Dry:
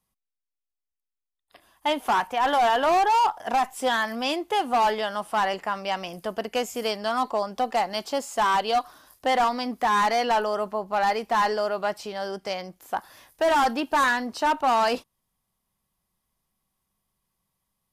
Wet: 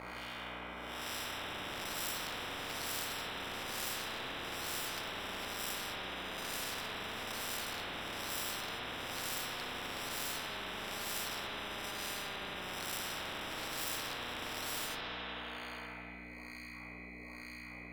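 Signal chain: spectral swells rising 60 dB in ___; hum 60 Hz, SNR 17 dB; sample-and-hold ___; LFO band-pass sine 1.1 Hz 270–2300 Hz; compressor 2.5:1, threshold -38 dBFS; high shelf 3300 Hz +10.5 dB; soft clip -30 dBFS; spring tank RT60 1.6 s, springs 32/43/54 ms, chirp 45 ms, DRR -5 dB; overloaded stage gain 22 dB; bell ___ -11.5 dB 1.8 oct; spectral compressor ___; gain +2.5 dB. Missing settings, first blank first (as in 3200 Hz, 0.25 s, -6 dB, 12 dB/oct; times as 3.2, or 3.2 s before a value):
2.56 s, 20×, 6500 Hz, 10:1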